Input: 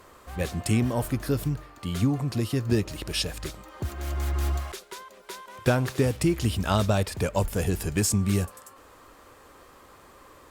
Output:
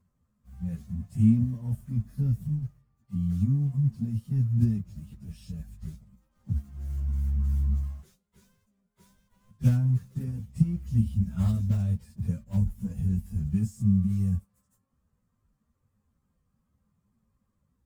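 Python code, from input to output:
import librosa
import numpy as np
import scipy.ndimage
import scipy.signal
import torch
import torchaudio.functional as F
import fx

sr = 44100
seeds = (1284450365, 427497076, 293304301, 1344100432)

p1 = fx.low_shelf(x, sr, hz=65.0, db=-11.5)
p2 = fx.quant_companded(p1, sr, bits=2)
p3 = p1 + F.gain(torch.from_numpy(p2), -7.0).numpy()
p4 = fx.stretch_vocoder_free(p3, sr, factor=1.7)
p5 = fx.curve_eq(p4, sr, hz=(220.0, 310.0, 4100.0, 6300.0), db=(0, -26, -29, -23))
p6 = fx.upward_expand(p5, sr, threshold_db=-42.0, expansion=1.5)
y = F.gain(torch.from_numpy(p6), 6.0).numpy()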